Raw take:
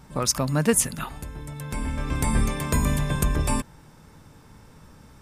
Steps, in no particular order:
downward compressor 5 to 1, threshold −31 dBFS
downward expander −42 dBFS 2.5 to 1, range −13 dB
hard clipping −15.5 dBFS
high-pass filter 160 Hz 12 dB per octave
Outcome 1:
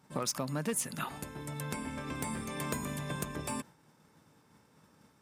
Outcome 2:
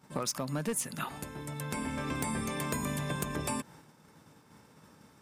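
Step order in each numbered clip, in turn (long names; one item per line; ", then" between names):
hard clipping, then downward compressor, then high-pass filter, then downward expander
downward expander, then high-pass filter, then hard clipping, then downward compressor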